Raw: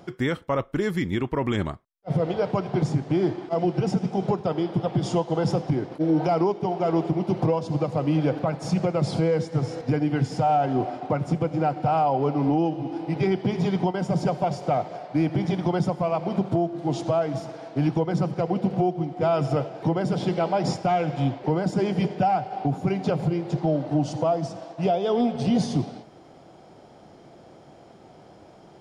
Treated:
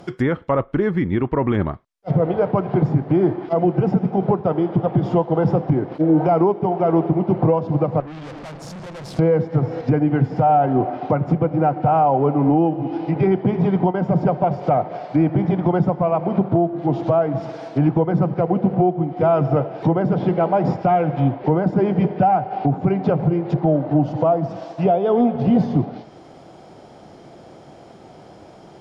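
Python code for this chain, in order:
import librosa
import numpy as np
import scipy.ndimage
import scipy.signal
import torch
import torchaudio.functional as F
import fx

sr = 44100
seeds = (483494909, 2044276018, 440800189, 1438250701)

y = fx.tube_stage(x, sr, drive_db=39.0, bias=0.75, at=(8.0, 9.19))
y = fx.env_lowpass_down(y, sr, base_hz=1600.0, full_db=-22.5)
y = F.gain(torch.from_numpy(y), 6.0).numpy()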